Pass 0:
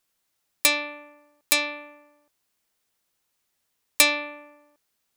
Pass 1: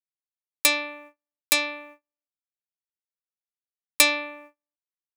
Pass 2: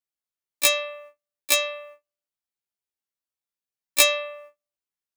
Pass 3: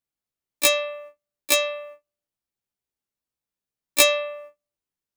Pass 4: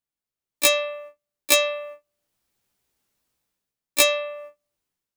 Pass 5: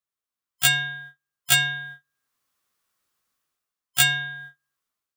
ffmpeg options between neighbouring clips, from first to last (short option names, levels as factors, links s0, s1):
-af "agate=range=0.0126:threshold=0.00447:ratio=16:detection=peak"
-af "afftfilt=real='re*1.73*eq(mod(b,3),0)':imag='im*1.73*eq(mod(b,3),0)':win_size=2048:overlap=0.75,volume=1.58"
-af "lowshelf=f=500:g=10"
-af "dynaudnorm=f=150:g=7:m=6.68,volume=0.794"
-af "afftfilt=real='real(if(lt(b,960),b+48*(1-2*mod(floor(b/48),2)),b),0)':imag='imag(if(lt(b,960),b+48*(1-2*mod(floor(b/48),2)),b),0)':win_size=2048:overlap=0.75,volume=0.891"